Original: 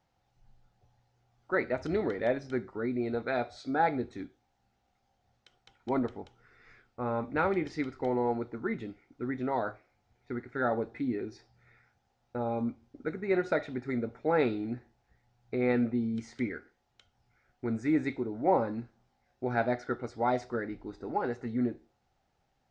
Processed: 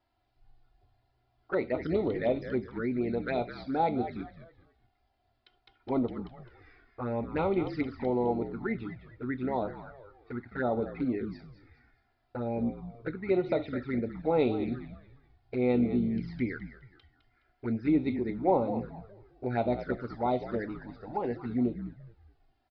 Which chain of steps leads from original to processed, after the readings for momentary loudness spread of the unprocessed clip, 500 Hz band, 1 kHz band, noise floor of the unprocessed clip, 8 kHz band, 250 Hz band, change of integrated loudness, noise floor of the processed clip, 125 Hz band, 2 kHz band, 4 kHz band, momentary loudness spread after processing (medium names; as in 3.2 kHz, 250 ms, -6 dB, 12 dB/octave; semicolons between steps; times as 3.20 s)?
12 LU, +1.0 dB, -1.5 dB, -76 dBFS, no reading, +2.0 dB, +0.5 dB, -74 dBFS, +3.0 dB, -4.5 dB, +0.5 dB, 14 LU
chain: frequency-shifting echo 209 ms, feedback 34%, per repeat -56 Hz, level -10.5 dB; resampled via 11.025 kHz; touch-sensitive flanger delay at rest 3 ms, full sweep at -26.5 dBFS; trim +2 dB